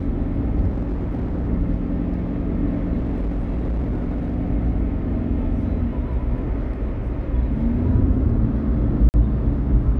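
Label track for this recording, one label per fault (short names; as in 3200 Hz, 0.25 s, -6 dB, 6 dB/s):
0.680000	1.490000	clipped -20 dBFS
2.970000	4.360000	clipped -19.5 dBFS
9.090000	9.140000	gap 49 ms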